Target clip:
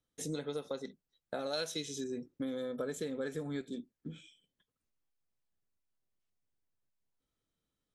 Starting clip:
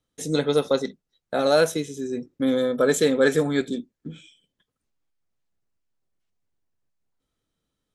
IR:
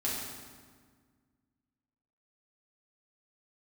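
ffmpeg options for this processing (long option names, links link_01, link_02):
-filter_complex "[0:a]asettb=1/sr,asplit=3[link_01][link_02][link_03];[link_01]atrim=end=2.814[link_04];[link_02]atrim=start=2.81:end=3.62,asetpts=PTS-STARTPTS,afade=type=in:duration=0.004:curve=qsin,afade=type=out:start_time=0.806:duration=0.004:curve=qsin,lowshelf=frequency=240:gain=7[link_05];[link_03]atrim=start=3.616[link_06];[link_04][link_05]acrossfade=duration=0.004:curve1=hsin:curve2=qsin[link_07];[link_07][link_06]acrossfade=duration=0.004:curve1=qsin:curve2=hsin,acompressor=threshold=-27dB:ratio=10,asettb=1/sr,asplit=3[link_08][link_09][link_10];[link_08]atrim=end=1.534[link_11];[link_09]atrim=start=1.53:end=2.04,asetpts=PTS-STARTPTS,afade=type=in:duration=0.004:curve=qsin,afade=type=out:start_time=0.506:duration=0.004:curve=qsin,equalizer=frequency=4200:width_type=o:width=1.7:gain=13[link_12];[link_10]atrim=start=2.036[link_13];[link_11][link_12]acrossfade=duration=0.004:curve1=hsin:curve2=qsin[link_14];[link_14][link_13]acrossfade=duration=0.004:curve1=qsin:curve2=hsin,volume=-7.5dB"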